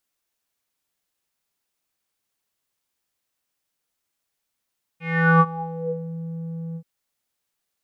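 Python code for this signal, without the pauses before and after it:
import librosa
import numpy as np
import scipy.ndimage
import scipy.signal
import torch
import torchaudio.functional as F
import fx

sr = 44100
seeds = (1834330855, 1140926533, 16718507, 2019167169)

y = fx.sub_voice(sr, note=52, wave='square', cutoff_hz=310.0, q=9.2, env_oct=3.0, env_s=1.15, attack_ms=401.0, decay_s=0.05, sustain_db=-18, release_s=0.07, note_s=1.76, slope=12)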